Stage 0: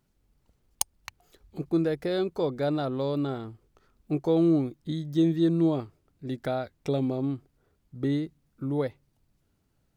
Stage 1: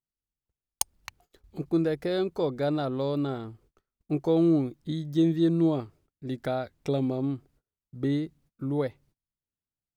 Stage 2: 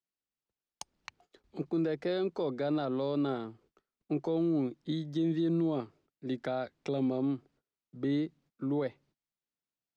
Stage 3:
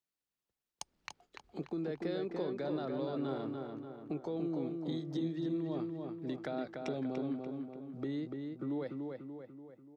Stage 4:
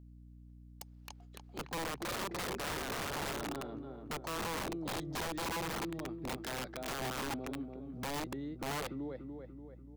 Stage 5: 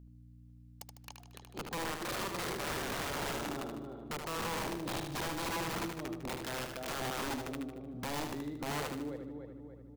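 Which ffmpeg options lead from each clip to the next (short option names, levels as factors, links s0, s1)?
-af "agate=range=0.0447:threshold=0.00112:ratio=16:detection=peak"
-filter_complex "[0:a]acrossover=split=160 6800:gain=0.158 1 0.0631[s0][s1][s2];[s0][s1][s2]amix=inputs=3:normalize=0,acrossover=split=140[s3][s4];[s4]alimiter=level_in=1.06:limit=0.0631:level=0:latency=1:release=25,volume=0.944[s5];[s3][s5]amix=inputs=2:normalize=0"
-filter_complex "[0:a]acompressor=threshold=0.0126:ratio=2.5,asplit=2[s0][s1];[s1]adelay=291,lowpass=f=3100:p=1,volume=0.631,asplit=2[s2][s3];[s3]adelay=291,lowpass=f=3100:p=1,volume=0.53,asplit=2[s4][s5];[s5]adelay=291,lowpass=f=3100:p=1,volume=0.53,asplit=2[s6][s7];[s7]adelay=291,lowpass=f=3100:p=1,volume=0.53,asplit=2[s8][s9];[s9]adelay=291,lowpass=f=3100:p=1,volume=0.53,asplit=2[s10][s11];[s11]adelay=291,lowpass=f=3100:p=1,volume=0.53,asplit=2[s12][s13];[s13]adelay=291,lowpass=f=3100:p=1,volume=0.53[s14];[s0][s2][s4][s6][s8][s10][s12][s14]amix=inputs=8:normalize=0"
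-af "aeval=exprs='(mod(44.7*val(0)+1,2)-1)/44.7':c=same,aeval=exprs='val(0)+0.00224*(sin(2*PI*60*n/s)+sin(2*PI*2*60*n/s)/2+sin(2*PI*3*60*n/s)/3+sin(2*PI*4*60*n/s)/4+sin(2*PI*5*60*n/s)/5)':c=same"
-af "aecho=1:1:76|152|228|304|380|456:0.501|0.241|0.115|0.0554|0.0266|0.0128"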